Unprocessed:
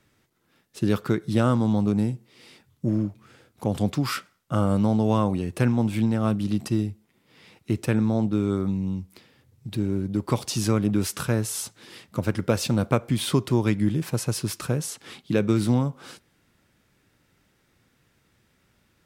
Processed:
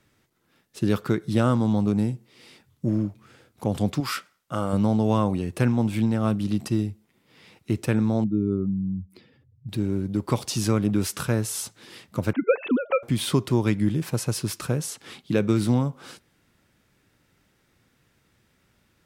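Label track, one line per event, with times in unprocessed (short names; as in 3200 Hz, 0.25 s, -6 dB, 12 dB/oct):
4.000000	4.730000	low shelf 290 Hz -9 dB
8.240000	9.690000	spectral contrast raised exponent 1.7
12.330000	13.030000	sine-wave speech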